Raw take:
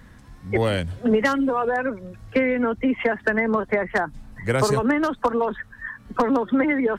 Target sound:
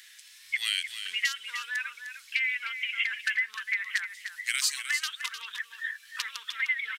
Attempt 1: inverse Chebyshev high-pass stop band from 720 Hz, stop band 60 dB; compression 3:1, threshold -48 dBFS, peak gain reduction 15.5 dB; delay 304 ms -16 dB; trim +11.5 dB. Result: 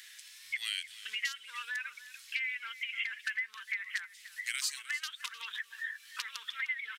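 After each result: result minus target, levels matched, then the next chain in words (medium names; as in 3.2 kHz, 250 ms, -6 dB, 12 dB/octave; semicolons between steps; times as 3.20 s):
compression: peak gain reduction +7 dB; echo-to-direct -6.5 dB
inverse Chebyshev high-pass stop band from 720 Hz, stop band 60 dB; compression 3:1, threshold -37.5 dBFS, peak gain reduction 8.5 dB; delay 304 ms -16 dB; trim +11.5 dB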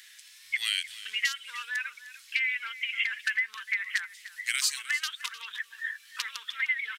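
echo-to-direct -6.5 dB
inverse Chebyshev high-pass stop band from 720 Hz, stop band 60 dB; compression 3:1, threshold -37.5 dBFS, peak gain reduction 8.5 dB; delay 304 ms -9.5 dB; trim +11.5 dB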